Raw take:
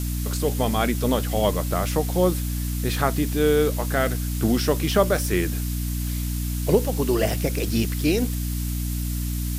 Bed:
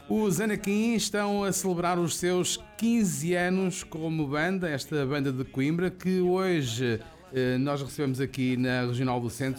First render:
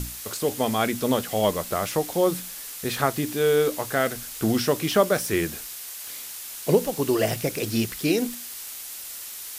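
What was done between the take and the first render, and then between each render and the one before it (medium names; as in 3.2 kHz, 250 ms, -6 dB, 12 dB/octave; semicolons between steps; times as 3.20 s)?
hum notches 60/120/180/240/300 Hz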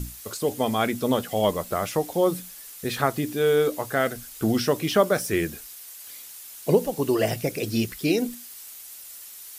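noise reduction 8 dB, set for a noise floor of -38 dBFS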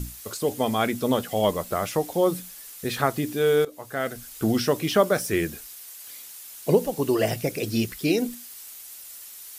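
3.65–4.32 s: fade in, from -19 dB; 5.89–6.47 s: high-pass 76 Hz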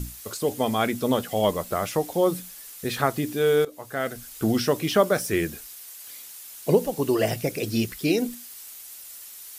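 no audible change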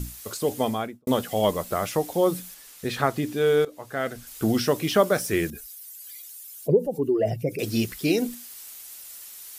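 0.60–1.07 s: studio fade out; 2.54–4.27 s: treble shelf 8.1 kHz -8 dB; 5.50–7.59 s: spectral contrast enhancement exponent 1.8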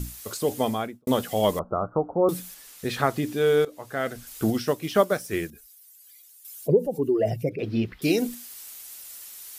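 1.59–2.29 s: steep low-pass 1.4 kHz 96 dB/octave; 4.50–6.45 s: upward expansion, over -34 dBFS; 7.49–8.02 s: distance through air 360 m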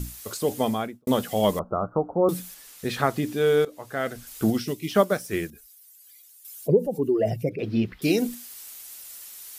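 4.64–4.89 s: time-frequency box 440–1900 Hz -15 dB; dynamic bell 200 Hz, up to +4 dB, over -39 dBFS, Q 3.8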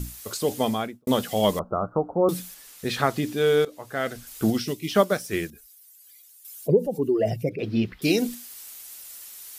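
dynamic bell 4.2 kHz, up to +4 dB, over -43 dBFS, Q 0.73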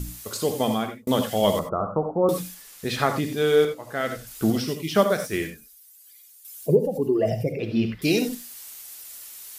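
gated-style reverb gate 110 ms rising, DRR 6.5 dB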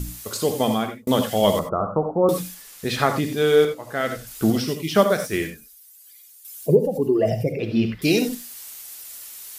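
trim +2.5 dB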